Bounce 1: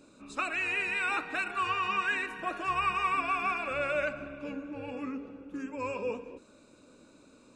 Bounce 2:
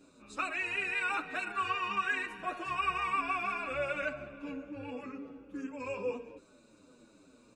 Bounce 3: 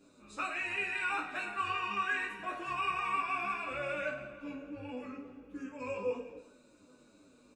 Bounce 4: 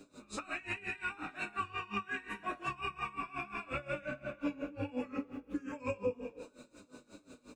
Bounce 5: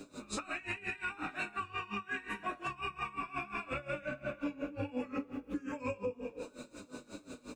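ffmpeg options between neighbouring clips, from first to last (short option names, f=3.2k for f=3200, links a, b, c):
-filter_complex "[0:a]asplit=2[a][b];[b]adelay=7.3,afreqshift=-2.5[c];[a][c]amix=inputs=2:normalize=1"
-af "aecho=1:1:20|52|103.2|185.1|316.2:0.631|0.398|0.251|0.158|0.1,volume=-3.5dB"
-filter_complex "[0:a]acrossover=split=280[a][b];[b]acompressor=threshold=-43dB:ratio=10[c];[a][c]amix=inputs=2:normalize=0,aeval=exprs='val(0)*pow(10,-21*(0.5-0.5*cos(2*PI*5.6*n/s))/20)':c=same,volume=11dB"
-af "alimiter=level_in=10dB:limit=-24dB:level=0:latency=1:release=481,volume=-10dB,volume=7dB"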